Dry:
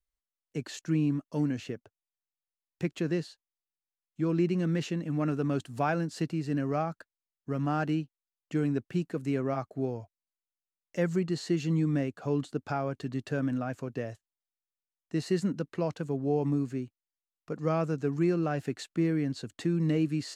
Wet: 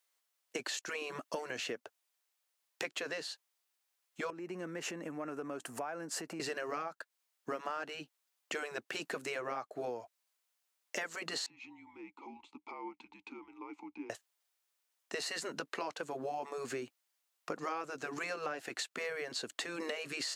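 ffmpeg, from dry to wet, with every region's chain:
-filter_complex "[0:a]asettb=1/sr,asplit=3[a][b][c];[a]atrim=end=4.304[d];[b]atrim=start=4.3:end=6.4,asetpts=PTS-STARTPTS,afade=t=in:d=0.004:c=qsin,afade=t=out:st=2.096:d=0.004:c=qsin,equalizer=f=3.8k:w=1.3:g=-12.5,acompressor=threshold=-41dB:ratio=6:attack=3.2:release=140:knee=1:detection=peak[e];[c]atrim=start=6.396[f];[d][e]acrossfade=d=0.004:c1=hsin:c2=qsin[g];[g][f]acrossfade=d=0.004:c1=qsin:c2=hsin,asettb=1/sr,asplit=3[h][i][j];[h]atrim=end=11.464[k];[i]atrim=start=11.46:end=14.1,asetpts=PTS-STARTPTS,afade=t=in:d=0.004:c=qsin,afade=t=out:st=2.636:d=0.004:c=qsin,afreqshift=-200,acompressor=threshold=-35dB:ratio=3:attack=3.2:release=140:knee=1:detection=peak,asplit=3[l][m][n];[l]bandpass=f=300:t=q:w=8,volume=0dB[o];[m]bandpass=f=870:t=q:w=8,volume=-6dB[p];[n]bandpass=f=2.24k:t=q:w=8,volume=-9dB[q];[o][p][q]amix=inputs=3:normalize=0[r];[j]atrim=start=14.096[s];[k][r]acrossfade=d=0.004:c1=hsin:c2=qsin[t];[t][s]acrossfade=d=0.004:c1=qsin:c2=hsin,afftfilt=real='re*lt(hypot(re,im),0.2)':imag='im*lt(hypot(re,im),0.2)':win_size=1024:overlap=0.75,highpass=540,acompressor=threshold=-49dB:ratio=12,volume=13.5dB"

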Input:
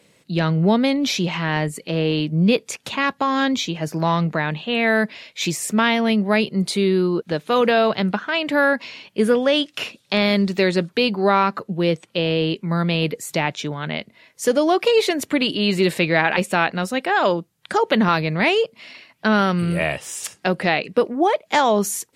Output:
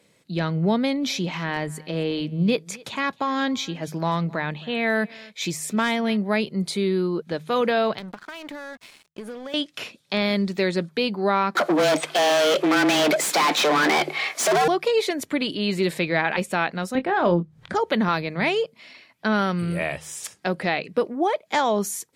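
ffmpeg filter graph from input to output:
-filter_complex "[0:a]asettb=1/sr,asplit=3[a][b][c];[a]atrim=end=0.764[d];[b]atrim=start=0.76:end=6.17,asetpts=PTS-STARTPTS,afade=t=in:d=0.004:c=qsin,afade=t=out:st=5.406:d=0.004:c=qsin,aecho=1:1:264:0.0668,atrim=end_sample=238581,asoftclip=type=hard:threshold=-7.5dB[e];[c]atrim=start=6.166[f];[d][e]acrossfade=d=0.004:c1=hsin:c2=qsin[g];[g][f]acrossfade=d=0.004:c1=qsin:c2=hsin,asettb=1/sr,asplit=3[h][i][j];[h]atrim=end=7.984[k];[i]atrim=start=7.98:end=9.54,asetpts=PTS-STARTPTS,afade=t=in:d=0.004:c=qsin,afade=t=out:st=1.556:d=0.004:c=qsin,acompressor=threshold=-25dB:ratio=10:attack=3.2:release=140:knee=1:detection=peak,aeval=exprs='sgn(val(0))*max(abs(val(0))-0.0126,0)':c=same[l];[j]atrim=start=9.536[m];[k][l]acrossfade=d=0.004:c1=hsin:c2=qsin[n];[n][m]acrossfade=d=0.004:c1=qsin:c2=hsin,asettb=1/sr,asplit=3[o][p][q];[o]atrim=end=11.554[r];[p]atrim=start=11.55:end=14.68,asetpts=PTS-STARTPTS,afade=t=in:d=0.004:c=qsin,afade=t=out:st=3.126:d=0.004:c=qsin,asplit=2[s][t];[t]highpass=f=720:p=1,volume=39dB,asoftclip=type=tanh:threshold=-5dB[u];[s][u]amix=inputs=2:normalize=0,lowpass=f=3k:p=1,volume=-6dB,asoftclip=type=hard:threshold=-13dB,afreqshift=150[v];[q]atrim=start=14.676[w];[r][v]acrossfade=d=0.004:c1=hsin:c2=qsin[x];[x][w]acrossfade=d=0.004:c1=qsin:c2=hsin,asettb=1/sr,asplit=3[y][z][aa];[y]atrim=end=16.954[ab];[z]atrim=start=16.95:end=17.75,asetpts=PTS-STARTPTS,afade=t=in:d=0.004:c=qsin,afade=t=out:st=0.796:d=0.004:c=qsin,aemphasis=mode=reproduction:type=riaa,acompressor=mode=upward:threshold=-31dB:ratio=2.5:attack=3.2:release=140:knee=2.83:detection=peak,asplit=2[ac][ad];[ad]adelay=23,volume=-9.5dB[ae];[ac][ae]amix=inputs=2:normalize=0,atrim=end_sample=35280[af];[aa]atrim=start=17.746[ag];[ab][af]acrossfade=d=0.004:c1=hsin:c2=qsin[ah];[ah][ag]acrossfade=d=0.004:c1=qsin:c2=hsin,bandreject=f=2.8k:w=15,bandreject=f=77.96:t=h:w=4,bandreject=f=155.92:t=h:w=4,volume=-4.5dB"

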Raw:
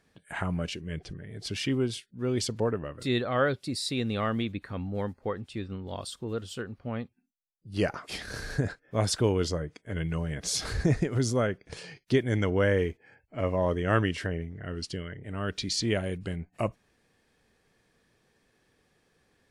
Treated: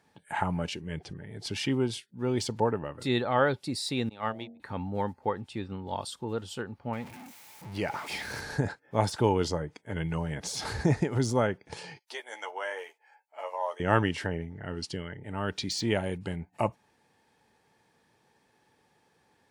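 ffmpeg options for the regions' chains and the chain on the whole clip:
-filter_complex "[0:a]asettb=1/sr,asplit=3[a][b][c];[a]atrim=end=4.094[d];[b]atrim=start=4.09:end=4.6,asetpts=PTS-STARTPTS,afade=t=in:d=0.004:c=qsin,afade=t=out:st=0.506:d=0.004:c=qsin,agate=range=-33dB:threshold=-28dB:ratio=16:release=100:detection=peak,bandreject=f=46.74:t=h:w=4,bandreject=f=93.48:t=h:w=4,bandreject=f=140.22:t=h:w=4,bandreject=f=186.96:t=h:w=4,bandreject=f=233.7:t=h:w=4,bandreject=f=280.44:t=h:w=4,bandreject=f=327.18:t=h:w=4,bandreject=f=373.92:t=h:w=4,bandreject=f=420.66:t=h:w=4,bandreject=f=467.4:t=h:w=4,bandreject=f=514.14:t=h:w=4,bandreject=f=560.88:t=h:w=4,bandreject=f=607.62:t=h:w=4,bandreject=f=654.36:t=h:w=4,bandreject=f=701.1:t=h:w=4,bandreject=f=747.84:t=h:w=4,bandreject=f=794.58:t=h:w=4[e];[c]atrim=start=4.596[f];[d][e]acrossfade=d=0.004:c1=hsin:c2=qsin[g];[g][f]acrossfade=d=0.004:c1=qsin:c2=hsin,asettb=1/sr,asplit=3[h][i][j];[h]atrim=end=6.934[k];[i]atrim=start=6.93:end=8.41,asetpts=PTS-STARTPTS,afade=t=in:d=0.004:c=qsin,afade=t=out:st=1.476:d=0.004:c=qsin,aeval=exprs='val(0)+0.5*0.00891*sgn(val(0))':c=same,equalizer=f=2.2k:t=o:w=0.4:g=8,acompressor=threshold=-37dB:ratio=1.5:attack=3.2:release=140:knee=1:detection=peak[l];[j]atrim=start=8.406[m];[k][l]acrossfade=d=0.004:c1=hsin:c2=qsin[n];[n][m]acrossfade=d=0.004:c1=qsin:c2=hsin,asettb=1/sr,asplit=3[o][p][q];[o]atrim=end=11.994[r];[p]atrim=start=11.99:end=13.8,asetpts=PTS-STARTPTS,afade=t=in:d=0.004:c=qsin,afade=t=out:st=1.806:d=0.004:c=qsin,highpass=f=690:w=0.5412,highpass=f=690:w=1.3066,equalizer=f=1.8k:t=o:w=2.9:g=-7,asplit=2[s][t];[t]adelay=13,volume=-5dB[u];[s][u]amix=inputs=2:normalize=0,atrim=end_sample=79821[v];[q]atrim=start=13.796[w];[r][v]acrossfade=d=0.004:c1=hsin:c2=qsin[x];[x][w]acrossfade=d=0.004:c1=qsin:c2=hsin,equalizer=f=870:w=6.5:g=15,deesser=0.65,highpass=87"

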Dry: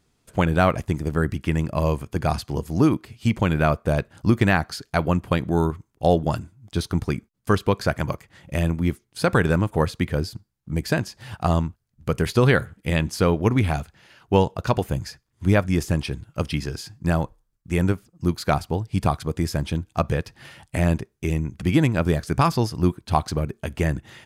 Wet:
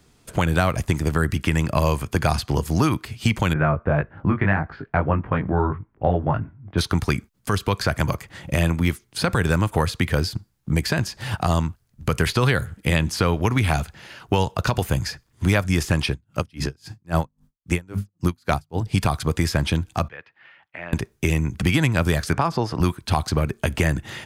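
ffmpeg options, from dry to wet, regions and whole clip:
-filter_complex "[0:a]asettb=1/sr,asplit=3[a][b][c];[a]atrim=end=3.534[d];[b]atrim=start=3.53:end=6.78,asetpts=PTS-STARTPTS,afade=t=in:d=0.004:c=qsin,afade=t=out:st=3.246:d=0.004:c=qsin,lowpass=f=2k:w=0.5412,lowpass=f=2k:w=1.3066,flanger=delay=19:depth=2.9:speed=1.7[e];[c]atrim=start=6.776[f];[d][e]acrossfade=d=0.004:c1=hsin:c2=qsin[g];[g][f]acrossfade=d=0.004:c1=qsin:c2=hsin,asettb=1/sr,asplit=3[h][i][j];[h]atrim=end=16.104[k];[i]atrim=start=16.1:end=18.86,asetpts=PTS-STARTPTS,afade=t=in:d=0.004:c=qsin,afade=t=out:st=2.756:d=0.004:c=qsin,bandreject=f=50:t=h:w=6,bandreject=f=100:t=h:w=6,bandreject=f=150:t=h:w=6,bandreject=f=200:t=h:w=6,bandreject=f=250:t=h:w=6,aeval=exprs='val(0)*pow(10,-38*(0.5-0.5*cos(2*PI*3.7*n/s))/20)':c=same[l];[j]atrim=start=18.856[m];[k][l]acrossfade=d=0.004:c1=hsin:c2=qsin[n];[n][m]acrossfade=d=0.004:c1=qsin:c2=hsin,asettb=1/sr,asplit=3[o][p][q];[o]atrim=end=20.084[r];[p]atrim=start=20.08:end=20.93,asetpts=PTS-STARTPTS,afade=t=in:d=0.004:c=qsin,afade=t=out:st=0.846:d=0.004:c=qsin,lowpass=f=2.2k:w=0.5412,lowpass=f=2.2k:w=1.3066,aderivative[s];[q]atrim=start=20.926[t];[r][s]acrossfade=d=0.004:c1=hsin:c2=qsin[u];[u][t]acrossfade=d=0.004:c1=qsin:c2=hsin,asettb=1/sr,asplit=3[v][w][x];[v]atrim=end=22.334[y];[w]atrim=start=22.33:end=22.8,asetpts=PTS-STARTPTS,afade=t=in:d=0.004:c=qsin,afade=t=out:st=0.466:d=0.004:c=qsin,bandpass=f=640:t=q:w=0.61,acompressor=mode=upward:threshold=-23dB:ratio=2.5:attack=3.2:release=140:knee=2.83:detection=peak[z];[x]atrim=start=22.796[aa];[y][z]acrossfade=d=0.004:c1=hsin:c2=qsin[ab];[ab][aa]acrossfade=d=0.004:c1=qsin:c2=hsin,acrossover=split=120|860|4200[ac][ad][ae][af];[ac]acompressor=threshold=-33dB:ratio=4[ag];[ad]acompressor=threshold=-33dB:ratio=4[ah];[ae]acompressor=threshold=-33dB:ratio=4[ai];[af]acompressor=threshold=-43dB:ratio=4[aj];[ag][ah][ai][aj]amix=inputs=4:normalize=0,alimiter=level_in=16.5dB:limit=-1dB:release=50:level=0:latency=1,volume=-6.5dB"

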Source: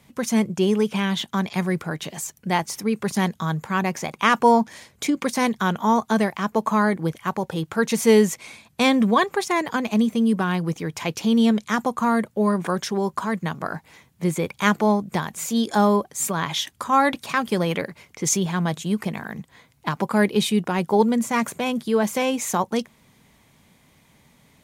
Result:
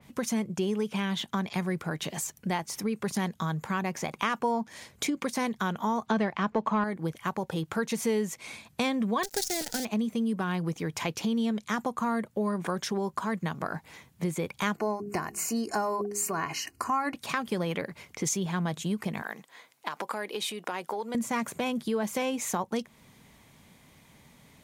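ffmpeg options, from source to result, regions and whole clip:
-filter_complex "[0:a]asettb=1/sr,asplit=3[a][b][c];[a]atrim=end=6.064[d];[b]atrim=start=6.06:end=6.84,asetpts=PTS-STARTPTS,afade=t=in:d=0.004:c=qsin,afade=t=out:st=0.776:d=0.004:c=qsin,lowpass=4.2k,acontrast=87[e];[c]atrim=start=6.836[f];[d][e]acrossfade=d=0.004:c1=hsin:c2=qsin[g];[g][f]acrossfade=d=0.004:c1=qsin:c2=hsin,asettb=1/sr,asplit=3[h][i][j];[h]atrim=end=9.234[k];[i]atrim=start=9.23:end=9.85,asetpts=PTS-STARTPTS,afade=t=in:d=0.004:c=qsin,afade=t=out:st=0.616:d=0.004:c=qsin,acrusher=bits=5:dc=4:mix=0:aa=0.000001,asuperstop=centerf=1100:order=4:qfactor=2.2,highshelf=f=3.6k:t=q:w=1.5:g=12[l];[j]atrim=start=9.846[m];[k][l]acrossfade=d=0.004:c1=hsin:c2=qsin[n];[n][m]acrossfade=d=0.004:c1=qsin:c2=hsin,asettb=1/sr,asplit=3[o][p][q];[o]atrim=end=14.774[r];[p]atrim=start=14.77:end=17.14,asetpts=PTS-STARTPTS,afade=t=in:d=0.004:c=qsin,afade=t=out:st=2.366:d=0.004:c=qsin,asuperstop=centerf=3500:order=12:qfactor=3.6,aecho=1:1:2.8:0.49,atrim=end_sample=104517,bandreject=f=68.26:t=h:w=4,bandreject=f=136.52:t=h:w=4,bandreject=f=204.78:t=h:w=4,bandreject=f=273.04:t=h:w=4,bandreject=f=341.3:t=h:w=4,bandreject=f=409.56:t=h:w=4,bandreject=f=477.82:t=h:w=4[s];[q]atrim=start=17.136[t];[r][s]acrossfade=d=0.004:c1=hsin:c2=qsin[u];[u][t]acrossfade=d=0.004:c1=qsin:c2=hsin,asettb=1/sr,asplit=3[v][w][x];[v]atrim=end=19.224[y];[w]atrim=start=19.22:end=21.15,asetpts=PTS-STARTPTS,afade=t=in:d=0.004:c=qsin,afade=t=out:st=1.926:d=0.004:c=qsin,acompressor=threshold=-24dB:ratio=6:attack=3.2:release=140:knee=1:detection=peak,highpass=460[z];[x]atrim=start=21.146[aa];[y][z]acrossfade=d=0.004:c1=hsin:c2=qsin[ab];[ab][aa]acrossfade=d=0.004:c1=qsin:c2=hsin,acompressor=threshold=-29dB:ratio=3,adynamicequalizer=threshold=0.01:dfrequency=3300:dqfactor=0.7:tfrequency=3300:tqfactor=0.7:attack=5:release=100:ratio=0.375:range=2:mode=cutabove:tftype=highshelf"

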